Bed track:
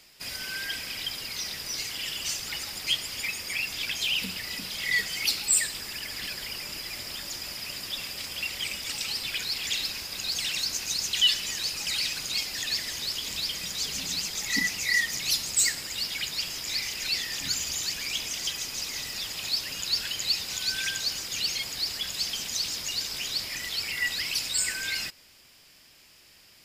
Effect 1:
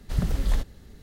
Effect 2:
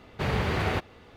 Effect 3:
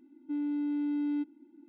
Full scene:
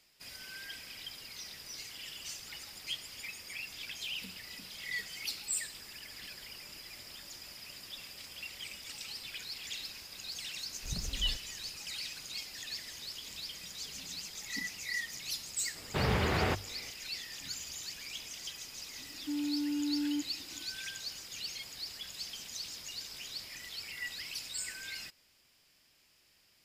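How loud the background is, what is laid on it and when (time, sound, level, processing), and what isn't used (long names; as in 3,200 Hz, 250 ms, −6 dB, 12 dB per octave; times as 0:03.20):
bed track −12 dB
0:10.74: mix in 1 −15 dB
0:15.75: mix in 2 −2.5 dB + mains-hum notches 50/100/150 Hz
0:18.98: mix in 3 −4.5 dB + low-shelf EQ 370 Hz +3.5 dB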